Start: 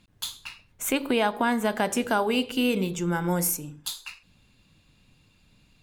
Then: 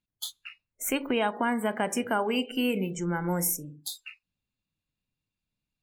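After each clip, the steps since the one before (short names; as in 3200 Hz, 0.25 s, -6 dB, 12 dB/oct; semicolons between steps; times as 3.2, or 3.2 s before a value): spectral noise reduction 24 dB; high shelf 12000 Hz +3.5 dB; gain -3 dB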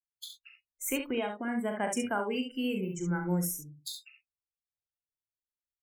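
per-bin expansion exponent 1.5; early reflections 39 ms -8 dB, 68 ms -7 dB; rotary speaker horn 0.9 Hz, later 6 Hz, at 3.64; gain -1 dB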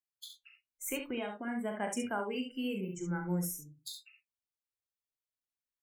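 flange 0.99 Hz, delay 8.8 ms, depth 2.8 ms, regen -64%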